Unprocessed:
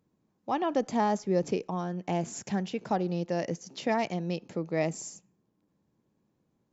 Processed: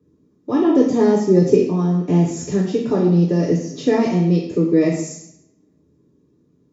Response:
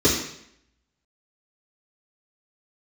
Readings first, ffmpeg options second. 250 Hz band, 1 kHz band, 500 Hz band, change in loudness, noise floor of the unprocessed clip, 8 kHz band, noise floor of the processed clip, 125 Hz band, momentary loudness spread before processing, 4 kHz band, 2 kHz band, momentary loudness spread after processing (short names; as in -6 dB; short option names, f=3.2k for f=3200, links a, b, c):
+16.0 dB, +2.0 dB, +13.5 dB, +14.0 dB, -76 dBFS, n/a, -60 dBFS, +16.5 dB, 6 LU, +6.0 dB, +5.0 dB, 6 LU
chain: -filter_complex "[1:a]atrim=start_sample=2205[a];[0:a][a]afir=irnorm=-1:irlink=0,volume=-11dB"